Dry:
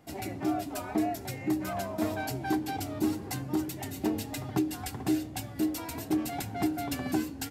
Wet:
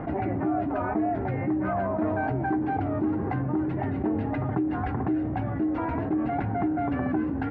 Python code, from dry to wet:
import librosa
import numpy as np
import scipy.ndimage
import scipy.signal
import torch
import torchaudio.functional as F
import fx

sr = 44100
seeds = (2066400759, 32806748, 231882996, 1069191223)

y = scipy.signal.sosfilt(scipy.signal.butter(4, 1700.0, 'lowpass', fs=sr, output='sos'), x)
y = fx.env_flatten(y, sr, amount_pct=70)